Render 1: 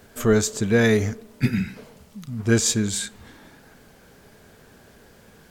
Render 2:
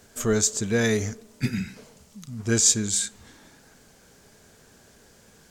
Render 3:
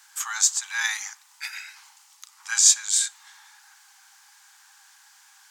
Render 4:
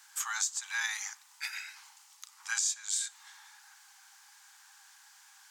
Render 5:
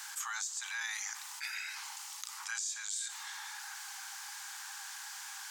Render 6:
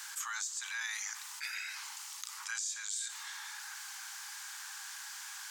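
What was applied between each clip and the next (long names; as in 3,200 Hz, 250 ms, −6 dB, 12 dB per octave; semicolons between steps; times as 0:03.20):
parametric band 6,800 Hz +10 dB 1.2 octaves; level −5 dB
Chebyshev high-pass filter 780 Hz, order 10; level +3.5 dB
downward compressor 5 to 1, threshold −26 dBFS, peak gain reduction 13.5 dB; level −3.5 dB
envelope flattener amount 70%; level −8.5 dB
high-pass filter 920 Hz 24 dB per octave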